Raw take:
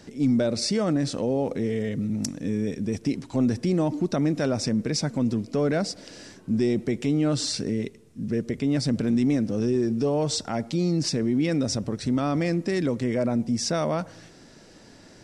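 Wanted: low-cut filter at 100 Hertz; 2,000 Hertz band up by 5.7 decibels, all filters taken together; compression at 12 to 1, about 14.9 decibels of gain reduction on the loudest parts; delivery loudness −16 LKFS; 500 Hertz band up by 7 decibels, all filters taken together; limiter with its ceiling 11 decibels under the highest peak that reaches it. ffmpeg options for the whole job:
ffmpeg -i in.wav -af "highpass=100,equalizer=frequency=500:width_type=o:gain=8.5,equalizer=frequency=2000:width_type=o:gain=6.5,acompressor=threshold=-30dB:ratio=12,volume=21dB,alimiter=limit=-7dB:level=0:latency=1" out.wav

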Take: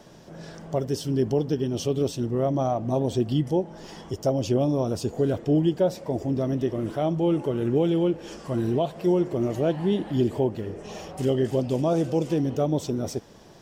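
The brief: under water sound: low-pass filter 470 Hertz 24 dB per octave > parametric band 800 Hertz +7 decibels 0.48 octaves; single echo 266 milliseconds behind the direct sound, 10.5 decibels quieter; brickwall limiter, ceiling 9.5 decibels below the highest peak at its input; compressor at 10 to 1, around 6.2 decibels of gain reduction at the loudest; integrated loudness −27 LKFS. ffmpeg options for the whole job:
ffmpeg -i in.wav -af "acompressor=threshold=-24dB:ratio=10,alimiter=level_in=1dB:limit=-24dB:level=0:latency=1,volume=-1dB,lowpass=frequency=470:width=0.5412,lowpass=frequency=470:width=1.3066,equalizer=frequency=800:width_type=o:width=0.48:gain=7,aecho=1:1:266:0.299,volume=8dB" out.wav

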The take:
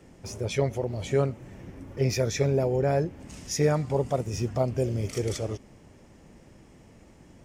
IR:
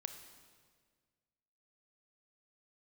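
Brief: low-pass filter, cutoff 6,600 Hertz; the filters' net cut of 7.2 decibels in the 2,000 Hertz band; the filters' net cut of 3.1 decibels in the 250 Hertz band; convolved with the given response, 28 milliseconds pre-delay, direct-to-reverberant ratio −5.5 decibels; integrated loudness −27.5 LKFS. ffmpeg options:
-filter_complex "[0:a]lowpass=6600,equalizer=frequency=250:width_type=o:gain=-5,equalizer=frequency=2000:width_type=o:gain=-9,asplit=2[link_01][link_02];[1:a]atrim=start_sample=2205,adelay=28[link_03];[link_02][link_03]afir=irnorm=-1:irlink=0,volume=8dB[link_04];[link_01][link_04]amix=inputs=2:normalize=0,volume=-4dB"

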